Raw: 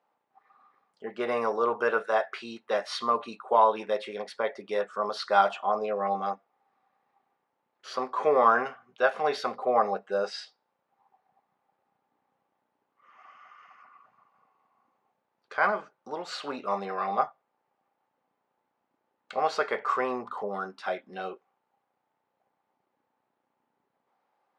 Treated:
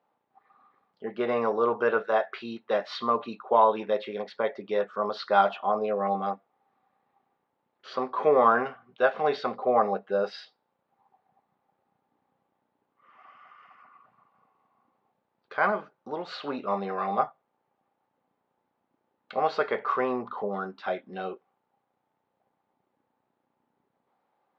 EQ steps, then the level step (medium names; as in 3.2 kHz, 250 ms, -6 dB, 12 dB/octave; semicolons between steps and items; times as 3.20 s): distance through air 200 m; bass shelf 380 Hz +7 dB; peaking EQ 3.8 kHz +5 dB 0.74 oct; 0.0 dB